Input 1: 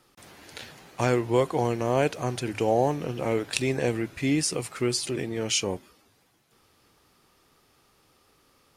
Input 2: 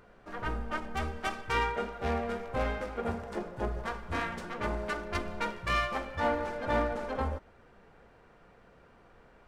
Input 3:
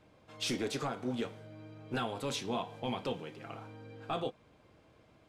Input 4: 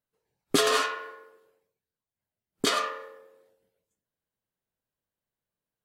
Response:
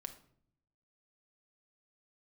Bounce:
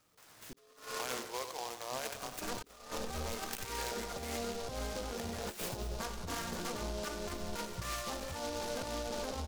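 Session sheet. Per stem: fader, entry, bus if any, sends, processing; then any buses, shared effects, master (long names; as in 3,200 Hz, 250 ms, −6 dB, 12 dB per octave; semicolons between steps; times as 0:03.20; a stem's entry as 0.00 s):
−8.0 dB, 0.00 s, muted 0:04.37–0:05.13, no send, echo send −9 dB, high-pass filter 1,100 Hz 12 dB per octave
0.0 dB, 2.15 s, no send, no echo send, downward compressor 12 to 1, threshold −36 dBFS, peak gain reduction 13.5 dB
−18.0 dB, 0.00 s, no send, no echo send, no processing
−5.0 dB, 0.00 s, no send, no echo send, low-shelf EQ 320 Hz +10 dB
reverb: not used
echo: repeating echo 93 ms, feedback 46%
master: high-shelf EQ 2,400 Hz −3.5 dB; compressor whose output falls as the input rises −40 dBFS, ratio −0.5; short delay modulated by noise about 4,300 Hz, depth 0.094 ms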